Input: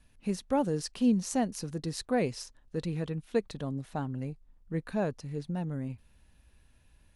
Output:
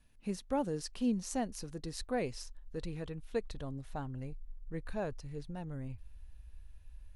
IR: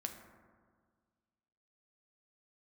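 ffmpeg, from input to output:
-af "asubboost=boost=11.5:cutoff=56,volume=-5dB"

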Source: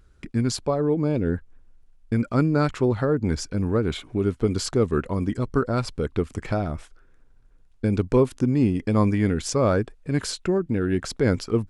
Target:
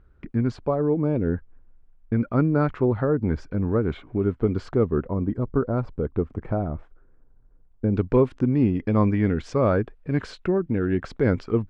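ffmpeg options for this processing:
-af "asetnsamples=n=441:p=0,asendcmd='4.85 lowpass f 1000;7.97 lowpass f 2400',lowpass=1.7k"

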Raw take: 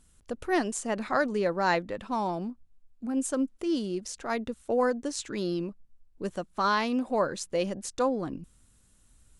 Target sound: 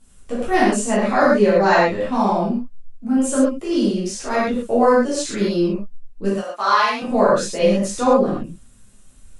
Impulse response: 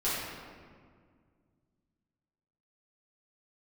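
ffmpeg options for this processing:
-filter_complex "[0:a]asettb=1/sr,asplit=3[a][b][c];[a]atrim=end=6.294[d];[b]atrim=start=6.29:end=7.02,asetpts=PTS-STARTPTS,afade=t=in:d=0.004:c=qsin,afade=t=out:st=0.726:d=0.004:c=qsin,highpass=730[e];[c]atrim=start=7.016[f];[d][e]acrossfade=d=0.004:c1=hsin:c2=qsin[g];[g][f]acrossfade=d=0.004:c1=qsin:c2=hsin[h];[1:a]atrim=start_sample=2205,atrim=end_sample=3528,asetrate=23814,aresample=44100[i];[h][i]afir=irnorm=-1:irlink=0"

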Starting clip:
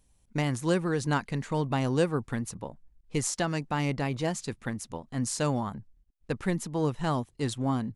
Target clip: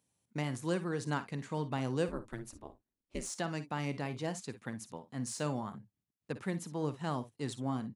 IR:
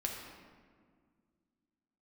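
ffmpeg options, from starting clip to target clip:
-filter_complex "[0:a]highpass=f=110:w=0.5412,highpass=f=110:w=1.3066,asettb=1/sr,asplit=3[a][b][c];[a]atrim=end=2.084[d];[b]atrim=start=2.08:end=3.3,asetpts=PTS-STARTPTS,afade=t=in:d=0.004:c=qsin,afade=t=out:st=1.216:d=0.004:c=qsin,aeval=exprs='val(0)*sin(2*PI*110*n/s)':c=same[e];[c]atrim=start=3.296[f];[d][e]acrossfade=d=0.004:c1=hsin:c2=qsin[g];[g][f]acrossfade=d=0.004:c1=qsin:c2=hsin,acrossover=split=2400[h][i];[i]asoftclip=type=tanh:threshold=-22.5dB[j];[h][j]amix=inputs=2:normalize=0,aecho=1:1:53|63:0.2|0.126,volume=-7.5dB"

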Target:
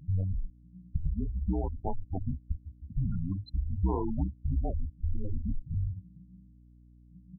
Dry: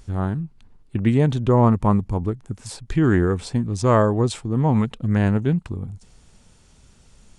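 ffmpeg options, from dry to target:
-filter_complex "[0:a]highshelf=f=2.9k:g=-2.5,aecho=1:1:24|34:0.237|0.398,acompressor=threshold=-25dB:ratio=16,asettb=1/sr,asplit=3[a][b][c];[a]atrim=end=0.974[d];[b]atrim=start=0.97:end=3.29,asetpts=PTS-STARTPTS,afade=t=in:d=0.004:c=qsin,afade=t=out:st=2.316:d=0.004:c=qsin,highpass=120,lowpass=5.2k[e];[c]atrim=start=3.286[f];[d][e]acrossfade=d=0.004:c1=hsin:c2=qsin[g];[g][f]acrossfade=d=0.004:c1=qsin:c2=hsin,adynamicequalizer=threshold=0.002:dfrequency=2300:dqfactor=1.8:tfrequency=2300:tqfactor=1.8:attack=5:release=100:ratio=0.375:range=2:mode=cutabove:tftype=bell,afftfilt=real='re*gte(hypot(re,im),0.0631)':imag='im*gte(hypot(re,im),0.0631)':win_size=1024:overlap=0.75,afreqshift=-190,aeval=exprs='val(0)+0.00178*(sin(2*PI*60*n/s)+sin(2*PI*2*60*n/s)/2+sin(2*PI*3*60*n/s)/3+sin(2*PI*4*60*n/s)/4+sin(2*PI*5*60*n/s)/5)':c=same"

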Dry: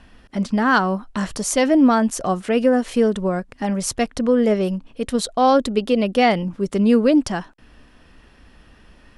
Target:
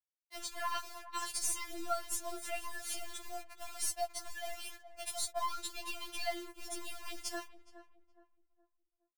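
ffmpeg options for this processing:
-filter_complex "[0:a]aemphasis=mode=production:type=riaa,agate=range=-33dB:threshold=-43dB:ratio=3:detection=peak,asplit=3[a][b][c];[a]afade=t=out:st=3.2:d=0.02[d];[b]lowshelf=f=480:t=q:w=3:g=-8,afade=t=in:st=3.2:d=0.02,afade=t=out:st=5.39:d=0.02[e];[c]afade=t=in:st=5.39:d=0.02[f];[d][e][f]amix=inputs=3:normalize=0,acompressor=threshold=-25dB:ratio=3,flanger=delay=4.9:depth=6.3:regen=-83:speed=0.43:shape=sinusoidal,aeval=exprs='val(0)+0.00126*(sin(2*PI*50*n/s)+sin(2*PI*2*50*n/s)/2+sin(2*PI*3*50*n/s)/3+sin(2*PI*4*50*n/s)/4+sin(2*PI*5*50*n/s)/5)':c=same,acrusher=bits=6:mix=0:aa=0.000001,aeval=exprs='(tanh(8.91*val(0)+0.45)-tanh(0.45))/8.91':c=same,asplit=2[g][h];[h]adelay=418,lowpass=f=1.1k:p=1,volume=-12.5dB,asplit=2[i][j];[j]adelay=418,lowpass=f=1.1k:p=1,volume=0.4,asplit=2[k][l];[l]adelay=418,lowpass=f=1.1k:p=1,volume=0.4,asplit=2[m][n];[n]adelay=418,lowpass=f=1.1k:p=1,volume=0.4[o];[g][i][k][m][o]amix=inputs=5:normalize=0,afftfilt=real='re*4*eq(mod(b,16),0)':imag='im*4*eq(mod(b,16),0)':win_size=2048:overlap=0.75,volume=-2.5dB"

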